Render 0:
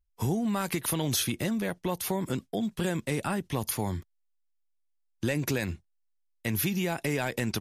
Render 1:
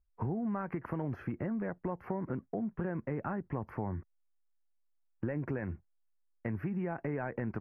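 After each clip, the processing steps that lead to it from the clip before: inverse Chebyshev low-pass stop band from 3400 Hz, stop band 40 dB; compressor 2:1, threshold -36 dBFS, peak gain reduction 7 dB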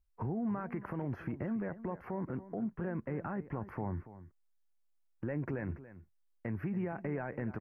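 limiter -28 dBFS, peak gain reduction 6 dB; echo 0.284 s -15 dB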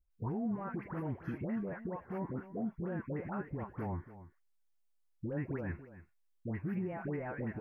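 dispersion highs, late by 0.109 s, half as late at 940 Hz; gain -1 dB

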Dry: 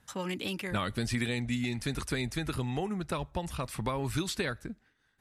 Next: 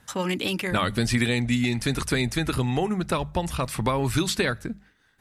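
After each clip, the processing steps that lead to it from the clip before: notches 50/100/150/200 Hz; gain +8.5 dB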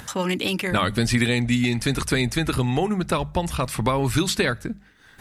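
upward compressor, threshold -33 dBFS; gain +2.5 dB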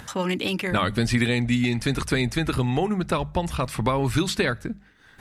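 high shelf 5700 Hz -6 dB; gain -1 dB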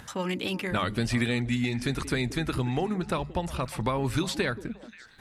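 delay with a stepping band-pass 0.178 s, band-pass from 290 Hz, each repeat 1.4 oct, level -11 dB; gain -5 dB

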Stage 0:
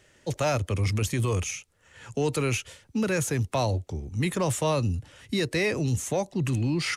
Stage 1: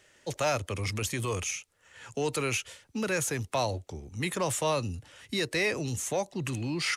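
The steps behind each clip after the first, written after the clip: low shelf 330 Hz -9.5 dB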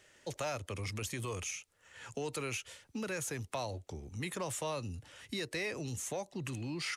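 compressor 2:1, threshold -38 dBFS, peak gain reduction 8 dB; gain -2 dB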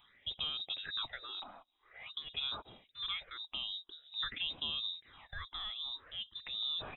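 inverted band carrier 3800 Hz; phaser stages 6, 0.48 Hz, lowest notch 110–2000 Hz; gain +1 dB

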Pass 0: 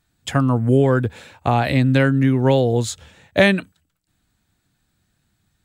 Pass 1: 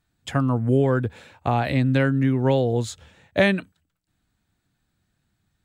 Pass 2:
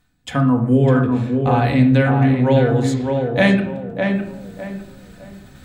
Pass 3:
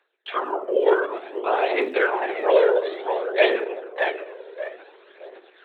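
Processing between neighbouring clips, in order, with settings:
high shelf 4300 Hz -5 dB; gain -4 dB
reverb RT60 0.65 s, pre-delay 4 ms, DRR 2 dB; reverse; upward compressor, threshold -25 dBFS; reverse; tape echo 0.606 s, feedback 34%, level -3 dB, low-pass 1800 Hz; gain +1.5 dB
LPC vocoder at 8 kHz whisper; phaser 0.56 Hz, delay 2.2 ms, feedback 46%; Chebyshev high-pass 380 Hz, order 5

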